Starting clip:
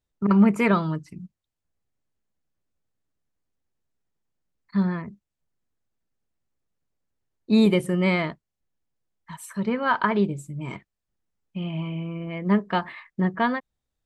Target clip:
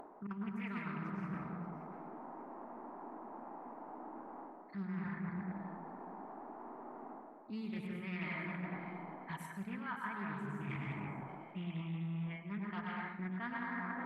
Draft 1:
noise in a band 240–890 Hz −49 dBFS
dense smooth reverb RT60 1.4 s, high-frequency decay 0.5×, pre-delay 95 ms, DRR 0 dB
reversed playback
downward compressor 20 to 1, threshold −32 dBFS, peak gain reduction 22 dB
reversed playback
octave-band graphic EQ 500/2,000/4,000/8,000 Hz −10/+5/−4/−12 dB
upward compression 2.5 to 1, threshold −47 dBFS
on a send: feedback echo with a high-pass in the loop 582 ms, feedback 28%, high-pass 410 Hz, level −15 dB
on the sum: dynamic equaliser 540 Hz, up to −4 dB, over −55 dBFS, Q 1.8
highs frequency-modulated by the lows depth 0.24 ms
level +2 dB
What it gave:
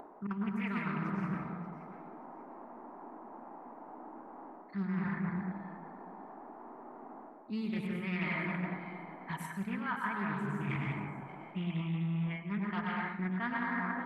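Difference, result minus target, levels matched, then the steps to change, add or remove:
downward compressor: peak gain reduction −6 dB
change: downward compressor 20 to 1, threshold −38.5 dBFS, peak gain reduction 28 dB

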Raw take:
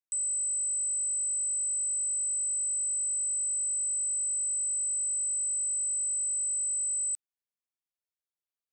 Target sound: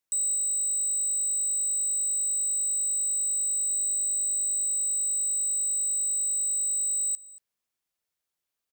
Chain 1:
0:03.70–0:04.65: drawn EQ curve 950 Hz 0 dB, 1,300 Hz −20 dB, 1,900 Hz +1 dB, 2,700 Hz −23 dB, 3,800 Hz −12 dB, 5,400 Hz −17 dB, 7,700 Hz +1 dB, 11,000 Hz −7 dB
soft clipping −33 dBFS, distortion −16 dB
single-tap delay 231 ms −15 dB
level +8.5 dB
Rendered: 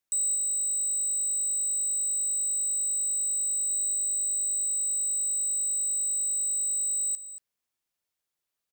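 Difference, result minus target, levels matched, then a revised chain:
echo-to-direct +6 dB
0:03.70–0:04.65: drawn EQ curve 950 Hz 0 dB, 1,300 Hz −20 dB, 1,900 Hz +1 dB, 2,700 Hz −23 dB, 3,800 Hz −12 dB, 5,400 Hz −17 dB, 7,700 Hz +1 dB, 11,000 Hz −7 dB
soft clipping −33 dBFS, distortion −16 dB
single-tap delay 231 ms −21 dB
level +8.5 dB

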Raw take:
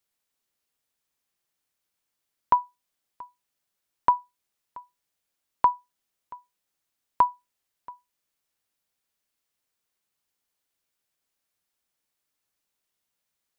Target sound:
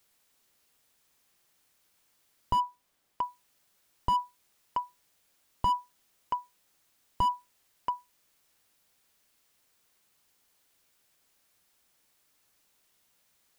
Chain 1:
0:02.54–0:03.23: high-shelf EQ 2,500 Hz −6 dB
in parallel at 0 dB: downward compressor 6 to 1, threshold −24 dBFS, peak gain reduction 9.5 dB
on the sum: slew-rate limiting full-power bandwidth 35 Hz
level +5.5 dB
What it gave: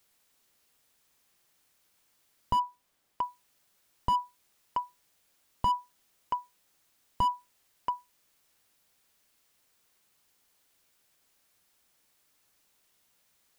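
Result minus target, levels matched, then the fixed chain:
downward compressor: peak gain reduction +5.5 dB
0:02.54–0:03.23: high-shelf EQ 2,500 Hz −6 dB
in parallel at 0 dB: downward compressor 6 to 1, threshold −17.5 dBFS, peak gain reduction 4 dB
on the sum: slew-rate limiting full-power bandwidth 35 Hz
level +5.5 dB

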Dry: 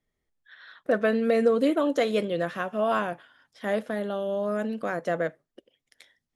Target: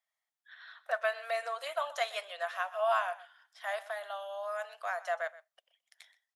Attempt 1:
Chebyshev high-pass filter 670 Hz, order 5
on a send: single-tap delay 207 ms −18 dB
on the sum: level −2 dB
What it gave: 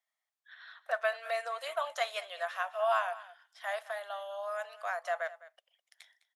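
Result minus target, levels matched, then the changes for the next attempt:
echo 83 ms late
change: single-tap delay 124 ms −18 dB

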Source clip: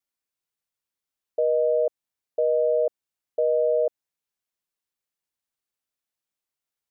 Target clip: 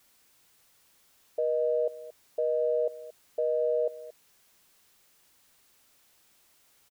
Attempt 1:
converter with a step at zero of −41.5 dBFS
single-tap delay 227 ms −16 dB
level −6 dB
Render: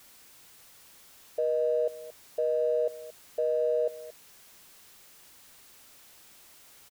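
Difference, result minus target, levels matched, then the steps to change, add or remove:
converter with a step at zero: distortion +9 dB
change: converter with a step at zero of −51 dBFS

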